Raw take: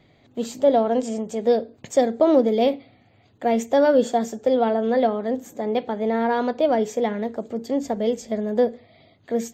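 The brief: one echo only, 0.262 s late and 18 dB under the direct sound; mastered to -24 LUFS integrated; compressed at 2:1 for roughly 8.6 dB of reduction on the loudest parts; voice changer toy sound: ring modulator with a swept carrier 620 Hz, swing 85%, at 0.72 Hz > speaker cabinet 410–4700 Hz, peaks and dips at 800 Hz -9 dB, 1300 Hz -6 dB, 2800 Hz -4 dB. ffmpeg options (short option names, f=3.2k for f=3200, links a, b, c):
-af "acompressor=threshold=-28dB:ratio=2,aecho=1:1:262:0.126,aeval=exprs='val(0)*sin(2*PI*620*n/s+620*0.85/0.72*sin(2*PI*0.72*n/s))':c=same,highpass=410,equalizer=f=800:t=q:w=4:g=-9,equalizer=f=1.3k:t=q:w=4:g=-6,equalizer=f=2.8k:t=q:w=4:g=-4,lowpass=f=4.7k:w=0.5412,lowpass=f=4.7k:w=1.3066,volume=11.5dB"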